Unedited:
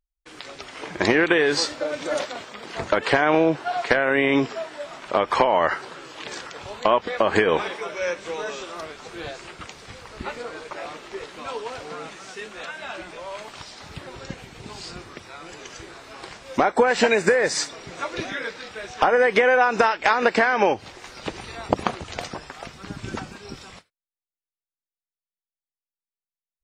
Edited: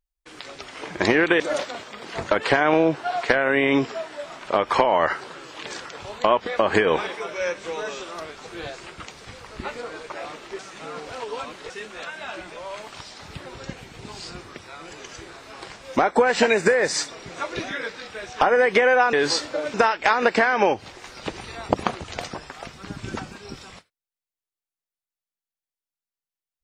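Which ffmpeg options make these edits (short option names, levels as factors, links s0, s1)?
-filter_complex "[0:a]asplit=6[s0][s1][s2][s3][s4][s5];[s0]atrim=end=1.402[s6];[s1]atrim=start=2.008:end=11.202[s7];[s2]atrim=start=11.198:end=12.312,asetpts=PTS-STARTPTS,areverse[s8];[s3]atrim=start=12.308:end=19.742[s9];[s4]atrim=start=1.398:end=2.012[s10];[s5]atrim=start=19.738[s11];[s6][s7]acrossfade=d=0.004:c1=hsin:c2=hsin[s12];[s12][s8]acrossfade=d=0.004:c1=hsin:c2=hsin[s13];[s13][s9]acrossfade=d=0.004:c1=hsin:c2=hsin[s14];[s14][s10]acrossfade=d=0.004:c1=hsin:c2=hsin[s15];[s15][s11]acrossfade=d=0.004:c1=hsin:c2=hsin"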